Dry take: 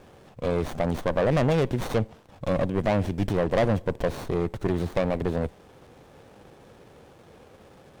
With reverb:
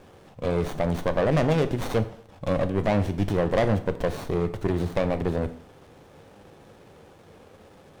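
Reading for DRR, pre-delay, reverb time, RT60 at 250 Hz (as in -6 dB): 10.0 dB, 5 ms, 0.60 s, 0.55 s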